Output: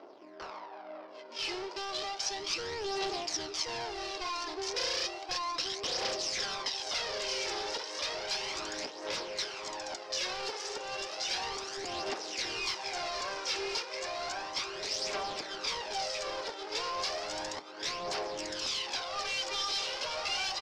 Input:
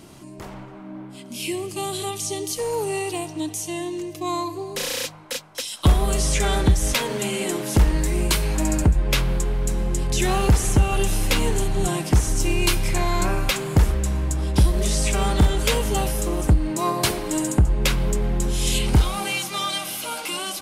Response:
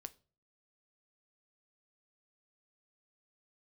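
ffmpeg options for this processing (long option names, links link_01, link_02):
-filter_complex "[0:a]adynamicsmooth=sensitivity=6:basefreq=580,asplit=2[link_01][link_02];[1:a]atrim=start_sample=2205[link_03];[link_02][link_03]afir=irnorm=-1:irlink=0,volume=5dB[link_04];[link_01][link_04]amix=inputs=2:normalize=0,acompressor=threshold=-23dB:ratio=4,highpass=frequency=460:width=0.5412,highpass=frequency=460:width=1.3066,aecho=1:1:1078|2156|3234|4312|5390:0.708|0.248|0.0867|0.0304|0.0106,volume=31dB,asoftclip=hard,volume=-31dB,lowpass=frequency=5200:width_type=q:width=4.9,aphaser=in_gain=1:out_gain=1:delay=2.4:decay=0.47:speed=0.33:type=triangular,volume=-5.5dB"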